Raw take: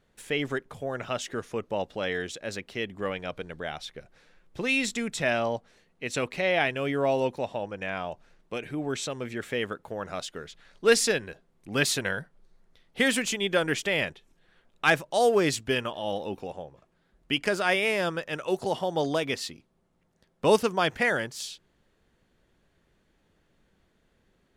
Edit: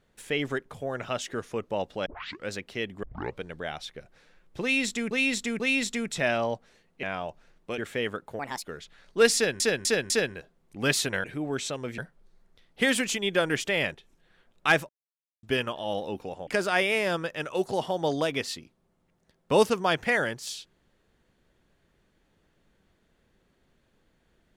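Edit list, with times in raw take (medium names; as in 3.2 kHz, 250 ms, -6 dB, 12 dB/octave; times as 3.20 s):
2.06 s: tape start 0.44 s
3.03 s: tape start 0.35 s
4.62–5.11 s: loop, 3 plays
6.05–7.86 s: delete
8.61–9.35 s: move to 12.16 s
9.96–10.31 s: speed 140%
11.02–11.27 s: loop, 4 plays
15.07–15.61 s: mute
16.65–17.40 s: delete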